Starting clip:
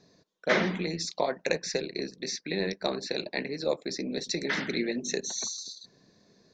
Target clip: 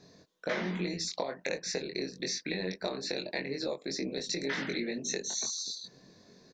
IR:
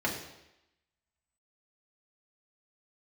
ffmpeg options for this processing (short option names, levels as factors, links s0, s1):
-filter_complex "[0:a]acompressor=threshold=0.0178:ratio=6,asplit=2[s0][s1];[s1]adelay=22,volume=0.708[s2];[s0][s2]amix=inputs=2:normalize=0,volume=1.33"